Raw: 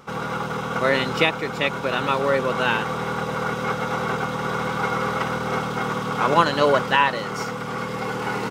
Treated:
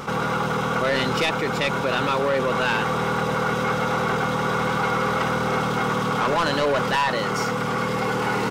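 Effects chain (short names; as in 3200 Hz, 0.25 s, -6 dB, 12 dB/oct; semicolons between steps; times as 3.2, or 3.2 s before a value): soft clip -17 dBFS, distortion -11 dB; fast leveller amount 50%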